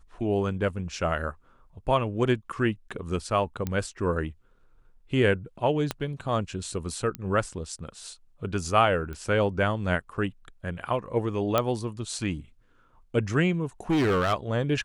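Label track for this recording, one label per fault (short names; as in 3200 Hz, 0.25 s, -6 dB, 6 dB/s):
3.670000	3.670000	pop -16 dBFS
5.910000	5.910000	pop -12 dBFS
7.150000	7.150000	pop -17 dBFS
9.130000	9.130000	pop -25 dBFS
11.580000	11.580000	pop -9 dBFS
13.900000	14.340000	clipped -20 dBFS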